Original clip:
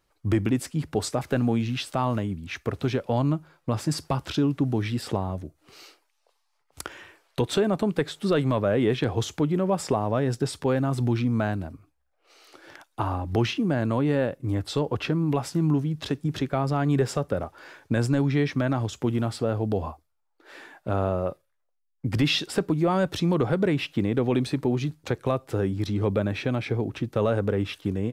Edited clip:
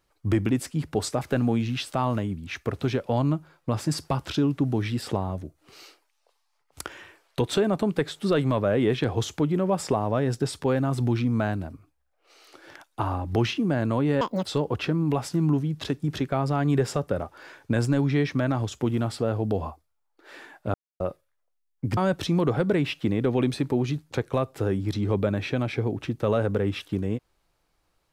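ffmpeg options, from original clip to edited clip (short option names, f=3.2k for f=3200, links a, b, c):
-filter_complex "[0:a]asplit=6[a][b][c][d][e][f];[a]atrim=end=14.214[g];[b]atrim=start=14.21:end=14.66,asetpts=PTS-STARTPTS,asetrate=82467,aresample=44100,atrim=end_sample=10612,asetpts=PTS-STARTPTS[h];[c]atrim=start=14.656:end=20.95,asetpts=PTS-STARTPTS,afade=t=out:st=6.29:d=0.004:c=hsin[i];[d]atrim=start=20.95:end=21.21,asetpts=PTS-STARTPTS,volume=0[j];[e]atrim=start=21.21:end=22.182,asetpts=PTS-STARTPTS,afade=t=in:d=0.004:c=hsin[k];[f]atrim=start=22.898[l];[g][h]acrossfade=d=0.004:c1=hsin:c2=hsin[m];[i][j][k]concat=n=3:v=0:a=1[n];[m][n]acrossfade=d=0.004:c1=hsin:c2=hsin[o];[o][l]acrossfade=d=0.004:c1=hsin:c2=hsin"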